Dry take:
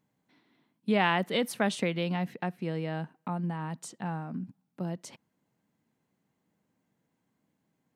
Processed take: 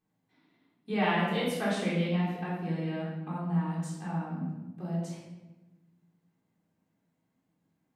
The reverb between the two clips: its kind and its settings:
rectangular room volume 610 cubic metres, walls mixed, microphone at 3.7 metres
level −10.5 dB

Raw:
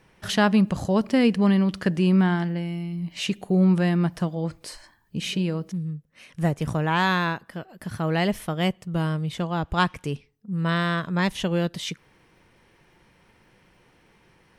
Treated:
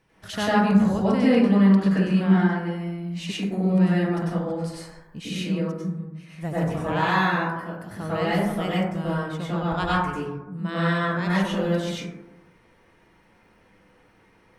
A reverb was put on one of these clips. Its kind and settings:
dense smooth reverb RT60 1 s, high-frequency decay 0.3×, pre-delay 85 ms, DRR −9 dB
level −8.5 dB

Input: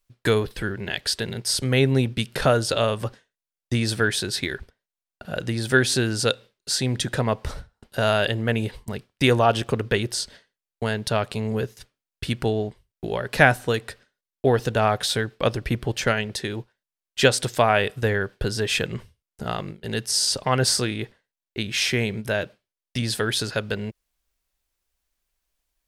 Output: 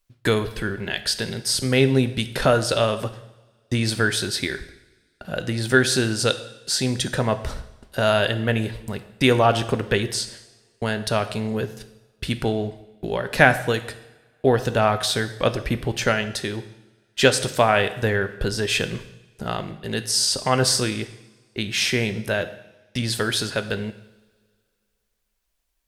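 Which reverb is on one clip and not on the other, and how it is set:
coupled-rooms reverb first 0.83 s, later 2.4 s, from −22 dB, DRR 10 dB
level +1 dB

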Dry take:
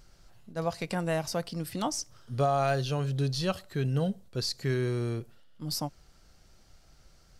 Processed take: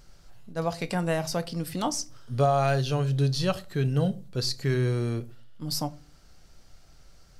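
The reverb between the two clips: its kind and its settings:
rectangular room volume 150 cubic metres, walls furnished, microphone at 0.35 metres
level +2.5 dB

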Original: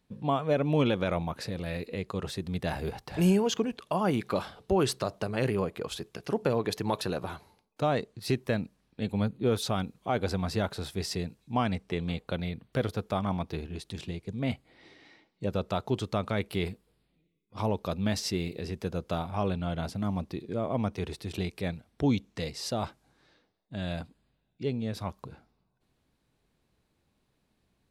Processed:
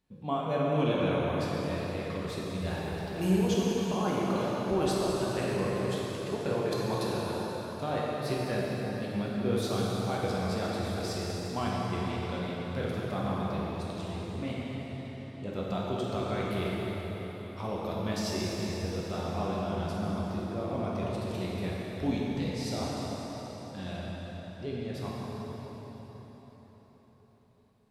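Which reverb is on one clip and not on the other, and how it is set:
dense smooth reverb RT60 5 s, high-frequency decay 0.8×, DRR −6 dB
level −7.5 dB

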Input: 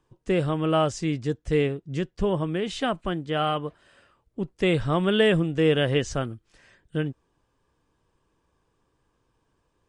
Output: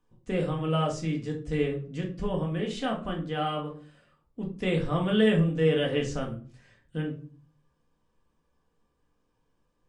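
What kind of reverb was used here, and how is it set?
rectangular room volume 310 cubic metres, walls furnished, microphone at 1.9 metres
level −8 dB

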